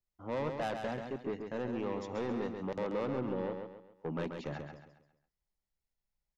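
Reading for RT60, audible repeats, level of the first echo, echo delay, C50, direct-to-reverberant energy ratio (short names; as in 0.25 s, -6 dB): none, 4, -6.0 dB, 0.135 s, none, none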